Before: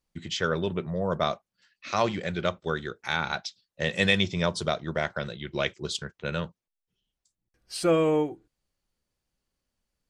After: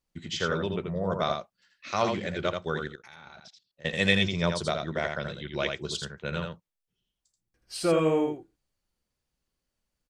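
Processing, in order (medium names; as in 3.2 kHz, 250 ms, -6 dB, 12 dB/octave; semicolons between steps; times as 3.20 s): 2.87–3.85 s: level held to a coarse grid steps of 24 dB; delay 82 ms -5 dB; trim -2 dB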